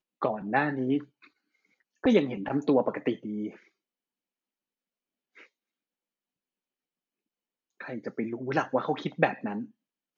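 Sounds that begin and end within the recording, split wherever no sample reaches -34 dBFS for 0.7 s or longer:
2.04–3.49 s

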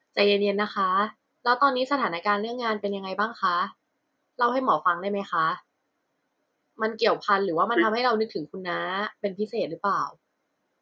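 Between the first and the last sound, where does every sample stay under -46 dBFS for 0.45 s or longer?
3.72–4.39 s
5.60–6.79 s

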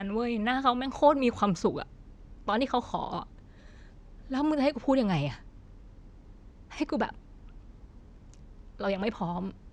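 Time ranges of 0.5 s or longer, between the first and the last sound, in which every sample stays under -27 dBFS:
1.82–2.48 s
3.19–4.32 s
5.28–6.81 s
7.09–8.81 s

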